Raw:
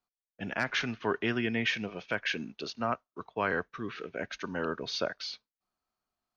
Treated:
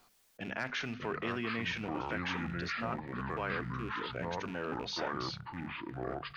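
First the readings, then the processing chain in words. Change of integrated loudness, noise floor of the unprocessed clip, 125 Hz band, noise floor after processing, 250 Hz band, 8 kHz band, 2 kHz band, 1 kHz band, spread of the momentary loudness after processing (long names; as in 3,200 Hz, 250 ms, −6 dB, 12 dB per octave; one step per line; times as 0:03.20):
−4.0 dB, below −85 dBFS, +1.5 dB, −66 dBFS, −3.0 dB, can't be measured, −4.5 dB, −1.0 dB, 5 LU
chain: loose part that buzzes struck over −42 dBFS, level −35 dBFS
mains-hum notches 50/100/150/200/250 Hz
delay with pitch and tempo change per echo 475 ms, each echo −5 semitones, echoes 2
envelope flattener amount 50%
level −8.5 dB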